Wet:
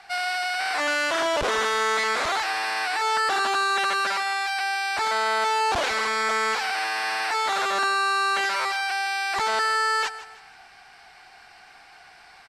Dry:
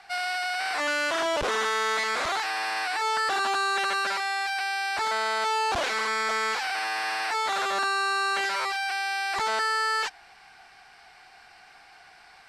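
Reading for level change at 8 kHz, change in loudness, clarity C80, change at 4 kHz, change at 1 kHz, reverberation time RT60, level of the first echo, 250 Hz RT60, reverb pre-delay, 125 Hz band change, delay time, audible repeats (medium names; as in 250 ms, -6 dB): +2.5 dB, +2.5 dB, no reverb, +2.5 dB, +3.0 dB, no reverb, -15.0 dB, no reverb, no reverb, no reading, 159 ms, 3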